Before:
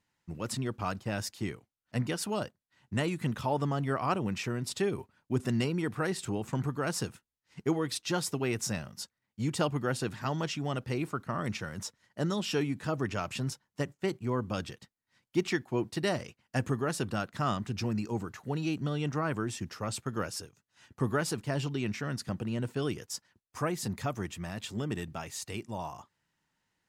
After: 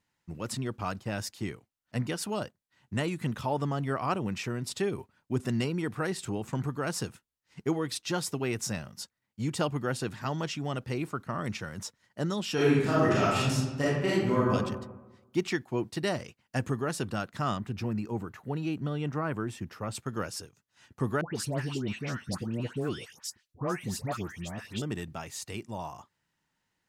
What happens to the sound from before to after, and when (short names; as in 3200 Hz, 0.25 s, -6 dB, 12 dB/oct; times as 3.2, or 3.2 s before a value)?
12.54–14.52 reverb throw, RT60 1.1 s, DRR -8 dB
17.58–19.95 bell 6100 Hz -9 dB 1.6 oct
21.21–24.82 dispersion highs, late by 0.147 s, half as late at 1500 Hz